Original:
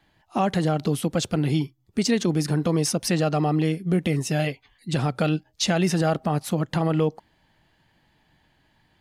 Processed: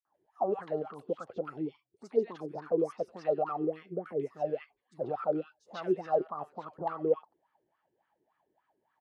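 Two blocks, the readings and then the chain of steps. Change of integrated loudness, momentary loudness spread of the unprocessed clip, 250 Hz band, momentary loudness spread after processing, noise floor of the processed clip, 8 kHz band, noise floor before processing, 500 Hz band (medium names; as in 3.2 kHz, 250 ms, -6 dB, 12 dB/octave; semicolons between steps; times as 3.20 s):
-10.0 dB, 4 LU, -15.0 dB, 9 LU, -81 dBFS, under -35 dB, -65 dBFS, -4.0 dB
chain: three bands offset in time highs, lows, mids 50/140 ms, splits 1.2/5.8 kHz; wah-wah 3.5 Hz 370–1300 Hz, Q 9.9; trim +5.5 dB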